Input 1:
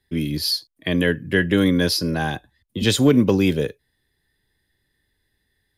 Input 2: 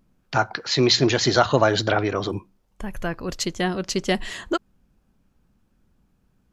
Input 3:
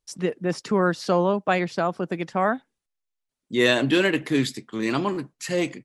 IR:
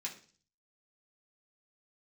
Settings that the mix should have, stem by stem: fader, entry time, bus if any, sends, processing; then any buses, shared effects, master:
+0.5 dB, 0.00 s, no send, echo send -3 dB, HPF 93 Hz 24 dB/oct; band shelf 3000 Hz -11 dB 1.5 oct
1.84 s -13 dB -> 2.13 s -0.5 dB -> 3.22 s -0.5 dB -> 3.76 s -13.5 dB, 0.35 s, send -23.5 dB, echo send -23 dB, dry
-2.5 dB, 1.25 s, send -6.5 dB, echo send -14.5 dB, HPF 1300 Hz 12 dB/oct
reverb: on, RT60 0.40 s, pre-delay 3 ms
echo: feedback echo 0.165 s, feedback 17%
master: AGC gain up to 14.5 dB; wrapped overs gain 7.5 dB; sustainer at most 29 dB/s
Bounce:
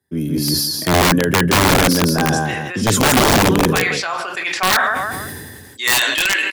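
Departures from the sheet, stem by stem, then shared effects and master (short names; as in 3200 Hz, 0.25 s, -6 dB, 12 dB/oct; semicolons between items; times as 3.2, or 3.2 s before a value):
stem 2: muted; stem 3: entry 1.25 s -> 2.25 s; reverb return +9.5 dB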